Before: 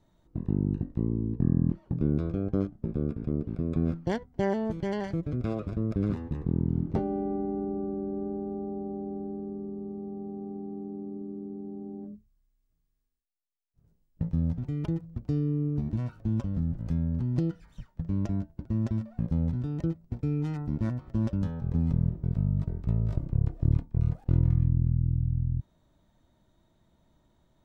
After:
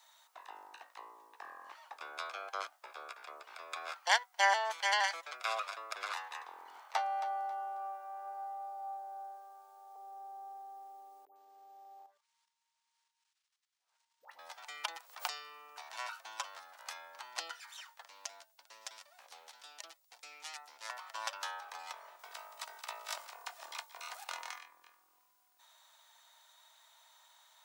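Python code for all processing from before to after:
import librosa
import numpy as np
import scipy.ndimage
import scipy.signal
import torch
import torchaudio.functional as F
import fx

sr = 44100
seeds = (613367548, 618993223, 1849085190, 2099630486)

y = fx.chain(x, sr, fx.highpass(hz=480.0, slope=24),
    fx.echo_feedback(ms=271, feedback_pct=24, wet_db=-12.5), at=(6.79, 9.96))
y = fx.chain(y, sr, fx.dispersion(late='highs', ms=108.0, hz=960.0),
    fx.level_steps(step_db=10),
    fx.resample_linear(factor=3), at=(11.25, 14.39))
y = fx.chain(y, sr, fx.highpass(hz=410.0, slope=12),
    fx.pre_swell(db_per_s=71.0), at=(14.97, 15.94))
y = fx.chain(y, sr, fx.peak_eq(hz=1200.0, db=-12.5, octaves=2.8),
    fx.doppler_dist(depth_ms=0.19), at=(18.08, 20.9))
y = fx.chain(y, sr, fx.high_shelf(hz=3000.0, db=8.0),
    fx.echo_single(ms=173, db=-16.5), at=(22.19, 24.59))
y = scipy.signal.sosfilt(scipy.signal.butter(6, 800.0, 'highpass', fs=sr, output='sos'), y)
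y = fx.high_shelf(y, sr, hz=2300.0, db=9.5)
y = y * librosa.db_to_amplitude(9.0)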